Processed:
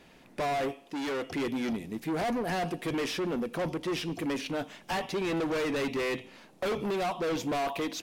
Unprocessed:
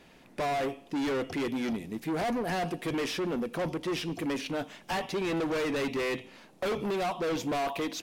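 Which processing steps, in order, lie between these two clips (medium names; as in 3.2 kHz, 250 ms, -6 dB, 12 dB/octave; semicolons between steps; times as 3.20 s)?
0.71–1.32 s: bass shelf 240 Hz -10.5 dB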